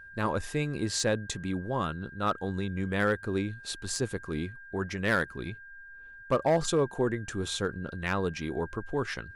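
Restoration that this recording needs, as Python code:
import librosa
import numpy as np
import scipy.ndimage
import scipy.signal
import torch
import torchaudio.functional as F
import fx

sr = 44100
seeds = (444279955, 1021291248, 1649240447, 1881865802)

y = fx.fix_declip(x, sr, threshold_db=-18.0)
y = fx.notch(y, sr, hz=1600.0, q=30.0)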